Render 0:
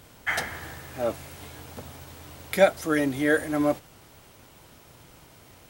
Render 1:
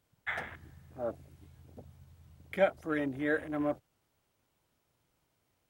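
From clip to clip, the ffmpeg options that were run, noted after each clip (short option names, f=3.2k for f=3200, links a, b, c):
-af "afwtdn=0.0178,volume=-8.5dB"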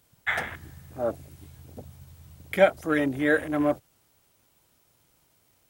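-af "highshelf=f=5k:g=9,volume=8dB"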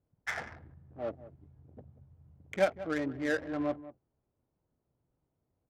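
-filter_complex "[0:a]asplit=2[a][b];[b]adelay=186.6,volume=-15dB,highshelf=f=4k:g=-4.2[c];[a][c]amix=inputs=2:normalize=0,adynamicsmooth=sensitivity=2.5:basefreq=710,volume=-8.5dB"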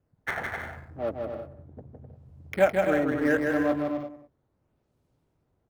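-filter_complex "[0:a]acrossover=split=580|2800[a][b][c];[c]acrusher=samples=10:mix=1:aa=0.000001:lfo=1:lforange=16:lforate=0.75[d];[a][b][d]amix=inputs=3:normalize=0,aecho=1:1:160|256|313.6|348.2|368.9:0.631|0.398|0.251|0.158|0.1,volume=6dB"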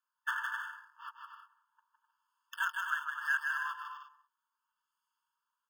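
-af "afftfilt=real='re*eq(mod(floor(b*sr/1024/890),2),1)':imag='im*eq(mod(floor(b*sr/1024/890),2),1)':win_size=1024:overlap=0.75"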